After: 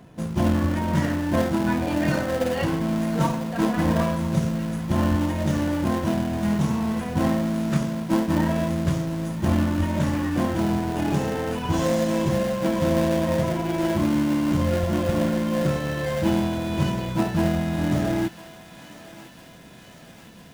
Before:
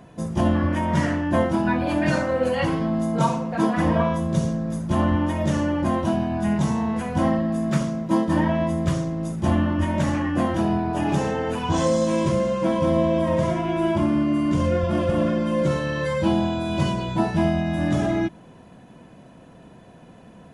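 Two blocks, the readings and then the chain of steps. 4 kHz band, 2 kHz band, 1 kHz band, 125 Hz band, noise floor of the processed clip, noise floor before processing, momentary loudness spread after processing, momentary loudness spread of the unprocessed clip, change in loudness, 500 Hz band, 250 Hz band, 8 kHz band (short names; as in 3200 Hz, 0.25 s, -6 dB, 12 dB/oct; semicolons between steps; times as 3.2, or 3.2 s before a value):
+0.5 dB, -1.0 dB, -3.0 dB, -0.5 dB, -46 dBFS, -47 dBFS, 4 LU, 3 LU, -1.0 dB, -2.5 dB, -0.5 dB, +1.5 dB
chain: in parallel at -6.5 dB: sample-rate reducer 1200 Hz, jitter 20%; on the sum: thinning echo 1 s, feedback 79%, high-pass 1100 Hz, level -13 dB; gain -3.5 dB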